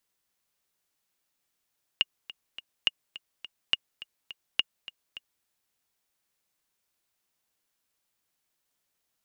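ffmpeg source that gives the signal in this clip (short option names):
-f lavfi -i "aevalsrc='pow(10,(-9-17.5*gte(mod(t,3*60/209),60/209))/20)*sin(2*PI*2850*mod(t,60/209))*exp(-6.91*mod(t,60/209)/0.03)':d=3.44:s=44100"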